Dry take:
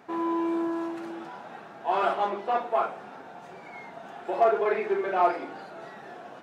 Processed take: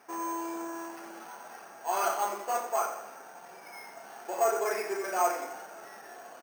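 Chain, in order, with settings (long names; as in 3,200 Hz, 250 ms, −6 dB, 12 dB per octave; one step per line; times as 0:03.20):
high-pass filter 740 Hz 6 dB per octave
on a send: repeating echo 88 ms, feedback 52%, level −10 dB
on the sum: bad sample-rate conversion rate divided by 6×, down filtered, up hold
level −1.5 dB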